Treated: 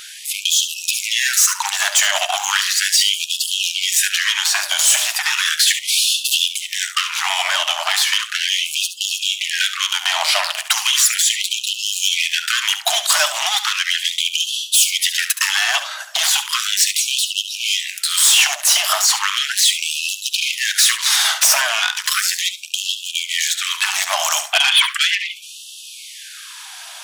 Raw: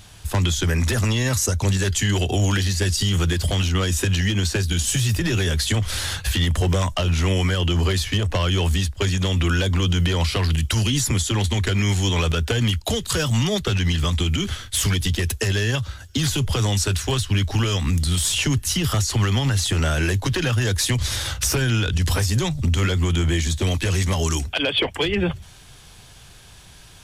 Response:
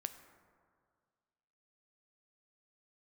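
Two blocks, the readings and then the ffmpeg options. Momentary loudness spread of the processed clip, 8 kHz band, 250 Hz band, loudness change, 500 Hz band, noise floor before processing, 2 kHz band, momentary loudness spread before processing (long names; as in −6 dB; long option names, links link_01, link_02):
8 LU, +10.5 dB, below −40 dB, +5.5 dB, −7.5 dB, −45 dBFS, +8.5 dB, 2 LU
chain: -filter_complex "[0:a]aeval=exprs='0.282*(cos(1*acos(clip(val(0)/0.282,-1,1)))-cos(1*PI/2))+0.0708*(cos(5*acos(clip(val(0)/0.282,-1,1)))-cos(5*PI/2))':channel_layout=same,asplit=2[link_01][link_02];[1:a]atrim=start_sample=2205,adelay=70[link_03];[link_02][link_03]afir=irnorm=-1:irlink=0,volume=-8.5dB[link_04];[link_01][link_04]amix=inputs=2:normalize=0,afftfilt=real='re*gte(b*sr/1024,560*pow(2600/560,0.5+0.5*sin(2*PI*0.36*pts/sr)))':imag='im*gte(b*sr/1024,560*pow(2600/560,0.5+0.5*sin(2*PI*0.36*pts/sr)))':win_size=1024:overlap=0.75,volume=6.5dB"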